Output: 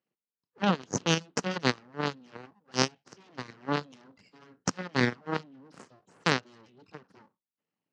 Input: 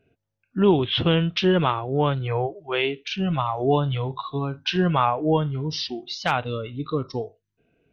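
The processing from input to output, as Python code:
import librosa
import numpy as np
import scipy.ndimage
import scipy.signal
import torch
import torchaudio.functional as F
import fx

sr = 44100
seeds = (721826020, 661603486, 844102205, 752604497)

y = fx.high_shelf(x, sr, hz=2000.0, db=8.5)
y = fx.cheby_harmonics(y, sr, harmonics=(3,), levels_db=(-9,), full_scale_db=-4.0)
y = np.abs(y)
y = fx.cabinet(y, sr, low_hz=110.0, low_slope=24, high_hz=5800.0, hz=(180.0, 260.0, 450.0, 660.0, 2300.0, 3500.0), db=(6, 4, 4, -4, -5, -7))
y = F.gain(torch.from_numpy(y), 4.0).numpy()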